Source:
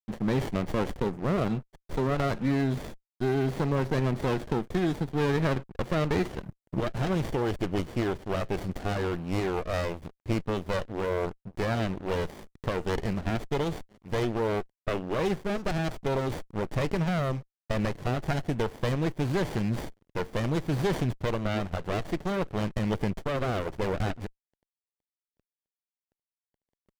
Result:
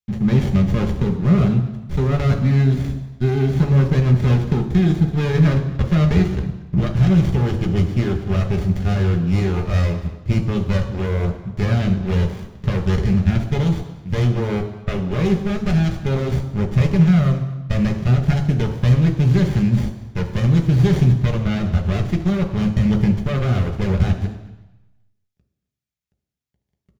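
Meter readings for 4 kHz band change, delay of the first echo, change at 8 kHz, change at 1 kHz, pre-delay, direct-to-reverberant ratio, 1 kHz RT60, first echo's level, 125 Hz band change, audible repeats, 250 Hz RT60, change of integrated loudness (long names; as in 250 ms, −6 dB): +5.5 dB, 231 ms, can't be measured, +1.5 dB, 3 ms, 3.0 dB, 1.1 s, −20.5 dB, +15.5 dB, 1, 0.95 s, +11.0 dB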